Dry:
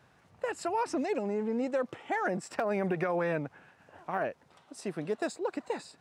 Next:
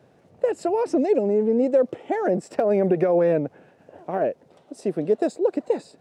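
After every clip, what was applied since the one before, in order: HPF 200 Hz 6 dB/oct; resonant low shelf 770 Hz +11 dB, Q 1.5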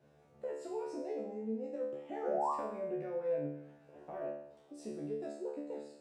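compressor 2:1, threshold -35 dBFS, peak gain reduction 11.5 dB; painted sound rise, 2.23–2.52, 450–1200 Hz -24 dBFS; resonator 73 Hz, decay 0.7 s, harmonics all, mix 100%; gain +3 dB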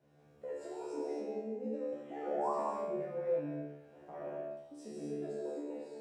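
non-linear reverb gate 0.29 s flat, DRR -3 dB; gain -4.5 dB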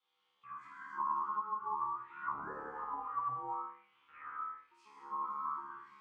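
ring modulator 640 Hz; auto-wah 690–3500 Hz, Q 5.5, down, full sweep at -34.5 dBFS; non-linear reverb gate 0.19 s flat, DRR 12 dB; gain +11 dB

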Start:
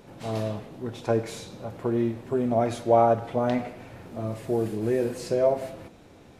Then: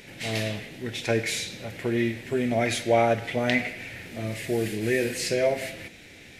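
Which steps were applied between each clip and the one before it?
resonant high shelf 1500 Hz +10 dB, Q 3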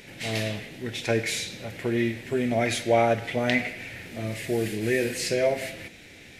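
nothing audible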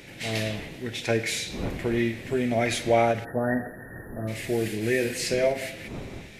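wind noise 330 Hz -42 dBFS; spectral delete 3.24–4.28, 1900–10000 Hz; ending taper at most 220 dB/s

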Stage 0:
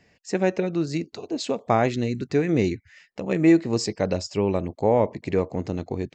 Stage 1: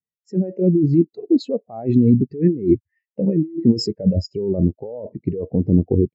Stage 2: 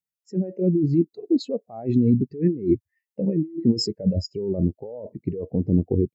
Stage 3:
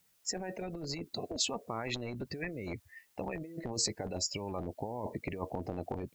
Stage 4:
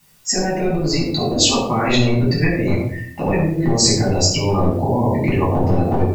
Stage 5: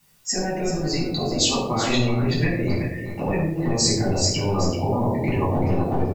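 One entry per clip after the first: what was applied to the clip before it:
negative-ratio compressor -27 dBFS, ratio -1; spectral expander 2.5:1; gain +7 dB
high shelf 4300 Hz +7.5 dB; gain -4.5 dB
limiter -18.5 dBFS, peak gain reduction 10.5 dB; spectral compressor 10:1
shoebox room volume 1000 m³, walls furnished, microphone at 9.8 m; gain +8.5 dB
echo 0.383 s -9.5 dB; gain -5.5 dB

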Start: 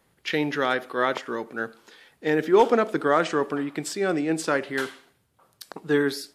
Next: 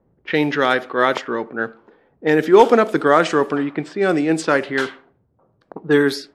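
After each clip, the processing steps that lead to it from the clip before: low-pass opened by the level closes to 530 Hz, open at -19.5 dBFS; gain +7 dB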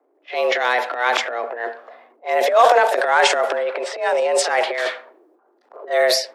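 pre-echo 31 ms -18 dB; transient shaper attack -9 dB, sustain +11 dB; frequency shift +240 Hz; gain -1.5 dB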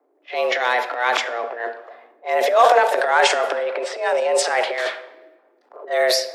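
shoebox room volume 770 m³, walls mixed, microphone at 0.36 m; gain -1 dB

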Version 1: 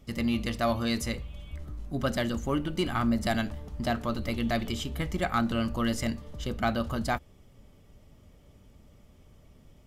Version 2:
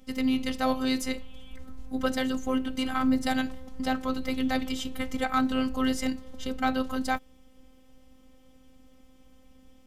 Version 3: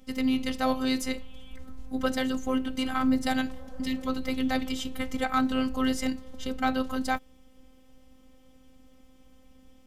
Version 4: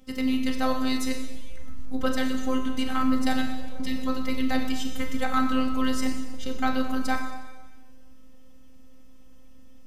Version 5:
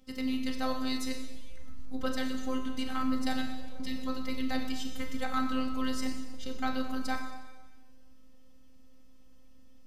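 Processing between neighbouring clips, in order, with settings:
robotiser 260 Hz; gain +3 dB
spectral repair 3.58–4.05, 400–1800 Hz before
Schroeder reverb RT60 1.3 s, combs from 30 ms, DRR 4 dB
bell 4500 Hz +4.5 dB 0.56 oct; gain -7 dB

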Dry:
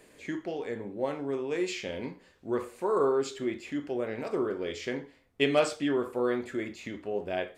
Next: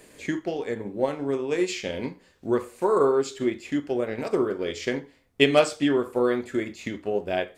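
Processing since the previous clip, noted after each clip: tone controls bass +2 dB, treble +4 dB; transient shaper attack +3 dB, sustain -4 dB; gain +4.5 dB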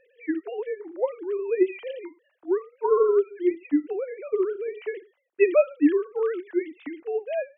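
sine-wave speech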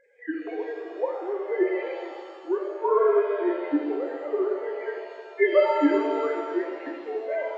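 nonlinear frequency compression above 1400 Hz 1.5:1; tilt shelf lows -4 dB, about 940 Hz; shimmer reverb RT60 1.9 s, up +7 st, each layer -8 dB, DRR 2.5 dB

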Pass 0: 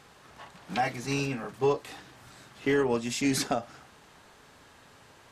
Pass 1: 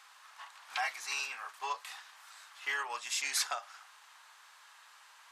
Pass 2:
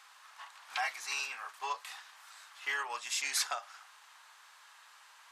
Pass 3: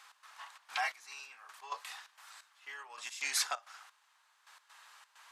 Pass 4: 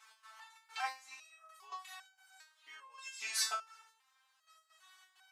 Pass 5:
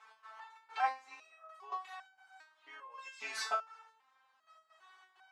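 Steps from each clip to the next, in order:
Chebyshev high-pass 1000 Hz, order 3
nothing audible
step gate "x.xxx.xx....." 131 bpm -12 dB
stepped resonator 2.5 Hz 220–760 Hz; gain +10.5 dB
band-pass 360 Hz, Q 0.62; gain +11.5 dB

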